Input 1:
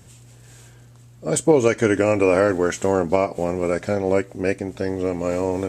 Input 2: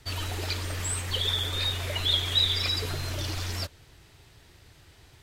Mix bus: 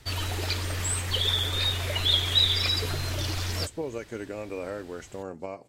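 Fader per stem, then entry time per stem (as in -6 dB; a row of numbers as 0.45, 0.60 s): -18.0, +2.0 dB; 2.30, 0.00 s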